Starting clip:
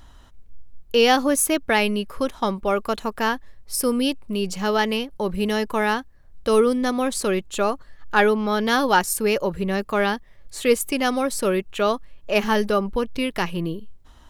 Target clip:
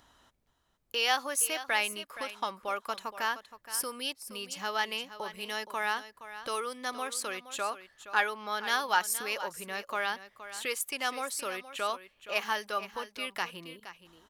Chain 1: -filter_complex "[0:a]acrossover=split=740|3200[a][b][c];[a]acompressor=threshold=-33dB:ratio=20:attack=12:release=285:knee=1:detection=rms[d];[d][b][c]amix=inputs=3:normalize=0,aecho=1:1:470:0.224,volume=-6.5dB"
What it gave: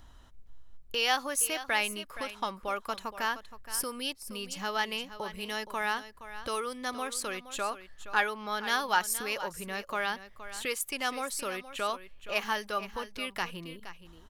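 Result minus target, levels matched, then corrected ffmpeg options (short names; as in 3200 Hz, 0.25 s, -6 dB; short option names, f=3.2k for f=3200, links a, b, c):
250 Hz band +4.5 dB
-filter_complex "[0:a]acrossover=split=740|3200[a][b][c];[a]acompressor=threshold=-33dB:ratio=20:attack=12:release=285:knee=1:detection=rms,highpass=f=340:p=1[d];[d][b][c]amix=inputs=3:normalize=0,aecho=1:1:470:0.224,volume=-6.5dB"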